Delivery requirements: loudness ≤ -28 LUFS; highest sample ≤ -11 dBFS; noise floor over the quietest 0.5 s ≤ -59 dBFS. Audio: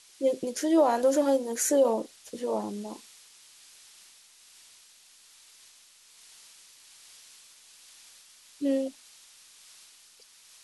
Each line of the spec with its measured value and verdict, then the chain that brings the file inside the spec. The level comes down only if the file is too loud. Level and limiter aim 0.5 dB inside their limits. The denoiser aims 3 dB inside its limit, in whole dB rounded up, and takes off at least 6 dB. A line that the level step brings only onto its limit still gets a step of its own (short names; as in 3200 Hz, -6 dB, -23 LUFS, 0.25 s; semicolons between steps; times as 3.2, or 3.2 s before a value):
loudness -27.0 LUFS: fail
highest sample -12.0 dBFS: OK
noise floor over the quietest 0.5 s -57 dBFS: fail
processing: denoiser 6 dB, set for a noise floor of -57 dBFS; gain -1.5 dB